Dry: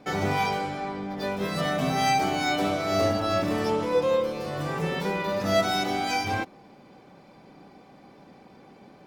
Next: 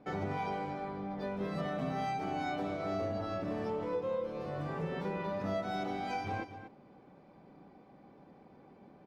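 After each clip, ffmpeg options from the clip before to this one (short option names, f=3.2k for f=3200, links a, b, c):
-filter_complex "[0:a]lowpass=f=1.2k:p=1,acompressor=threshold=-26dB:ratio=6,asplit=2[a][b];[b]aecho=0:1:238:0.266[c];[a][c]amix=inputs=2:normalize=0,volume=-6dB"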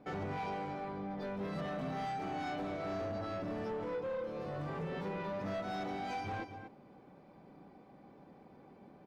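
-af "asoftclip=type=tanh:threshold=-33.5dB"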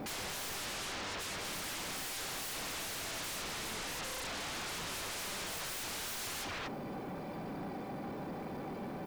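-af "crystalizer=i=1.5:c=0,aeval=exprs='0.0224*(cos(1*acos(clip(val(0)/0.0224,-1,1)))-cos(1*PI/2))+0.00224*(cos(2*acos(clip(val(0)/0.0224,-1,1)))-cos(2*PI/2))':c=same,aeval=exprs='0.0266*sin(PI/2*10*val(0)/0.0266)':c=same,volume=-6dB"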